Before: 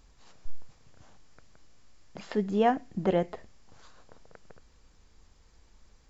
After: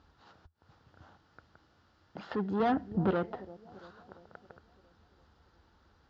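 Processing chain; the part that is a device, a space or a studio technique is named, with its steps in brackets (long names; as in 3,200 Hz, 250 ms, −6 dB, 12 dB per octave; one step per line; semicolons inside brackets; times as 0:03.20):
analogue delay pedal into a guitar amplifier (bucket-brigade delay 340 ms, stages 2,048, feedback 58%, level −23.5 dB; tube saturation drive 28 dB, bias 0.4; loudspeaker in its box 76–4,400 Hz, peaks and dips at 82 Hz +8 dB, 320 Hz +4 dB, 840 Hz +5 dB, 1,400 Hz +9 dB, 2,300 Hz −8 dB)
0:02.60–0:03.11: low-shelf EQ 240 Hz +10 dB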